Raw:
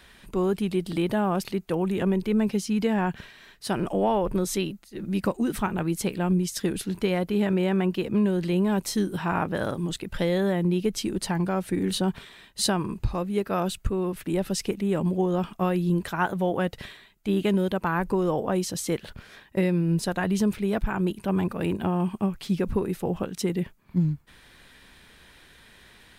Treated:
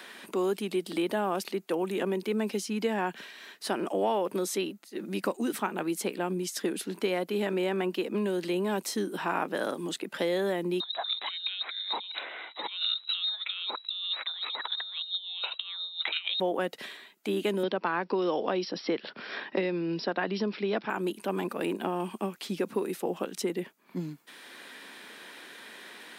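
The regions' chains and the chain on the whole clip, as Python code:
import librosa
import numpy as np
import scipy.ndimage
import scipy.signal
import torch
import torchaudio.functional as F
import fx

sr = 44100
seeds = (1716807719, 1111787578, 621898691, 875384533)

y = fx.chain(x, sr, fx.freq_invert(carrier_hz=3900),
    fx.highpass(hz=600.0, slope=12),
    fx.over_compress(threshold_db=-31.0, ratio=-0.5), at=(10.8, 16.4))
y = fx.chain(y, sr, fx.brickwall_lowpass(high_hz=5700.0),
    fx.band_squash(depth_pct=70), at=(17.63, 20.9))
y = scipy.signal.sosfilt(scipy.signal.butter(4, 250.0, 'highpass', fs=sr, output='sos'), y)
y = fx.band_squash(y, sr, depth_pct=40)
y = y * 10.0 ** (-2.0 / 20.0)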